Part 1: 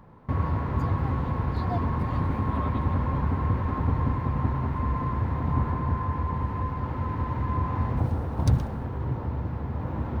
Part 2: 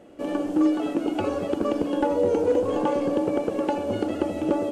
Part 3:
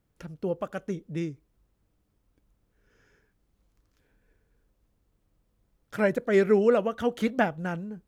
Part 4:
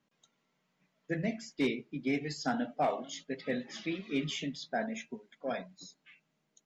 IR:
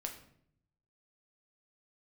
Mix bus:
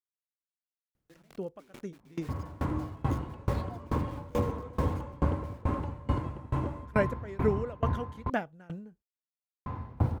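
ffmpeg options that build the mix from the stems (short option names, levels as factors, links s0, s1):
-filter_complex "[0:a]bandreject=f=1800:w=17,adelay=2000,volume=1.12,asplit=3[s0][s1][s2];[s0]atrim=end=8.3,asetpts=PTS-STARTPTS,afade=t=out:st=8.296:d=0.004:c=hsin[s3];[s1]atrim=start=8.3:end=9.66,asetpts=PTS-STARTPTS,volume=0[s4];[s2]atrim=start=9.66,asetpts=PTS-STARTPTS,afade=t=in:d=0.004:c=hsin[s5];[s3][s4][s5]concat=n=3:v=0:a=1[s6];[1:a]adelay=2150,volume=0.422[s7];[2:a]adelay=950,volume=0.944[s8];[3:a]equalizer=f=3500:w=1.1:g=-8,acompressor=threshold=0.0141:ratio=5,acrusher=bits=6:mix=0:aa=0.000001,volume=0.668[s9];[s6][s7][s8][s9]amix=inputs=4:normalize=0,aeval=exprs='val(0)*pow(10,-26*if(lt(mod(2.3*n/s,1),2*abs(2.3)/1000),1-mod(2.3*n/s,1)/(2*abs(2.3)/1000),(mod(2.3*n/s,1)-2*abs(2.3)/1000)/(1-2*abs(2.3)/1000))/20)':c=same"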